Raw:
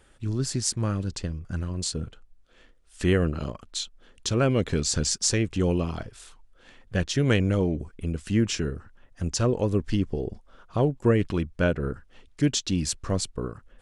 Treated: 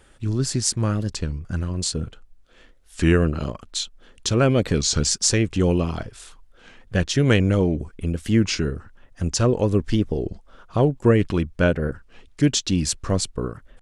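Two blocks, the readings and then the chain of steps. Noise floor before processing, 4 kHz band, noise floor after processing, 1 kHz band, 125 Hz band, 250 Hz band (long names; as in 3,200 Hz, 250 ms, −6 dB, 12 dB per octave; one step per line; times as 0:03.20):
−58 dBFS, +4.5 dB, −54 dBFS, +4.5 dB, +4.5 dB, +4.5 dB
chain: wow of a warped record 33 1/3 rpm, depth 160 cents
level +4.5 dB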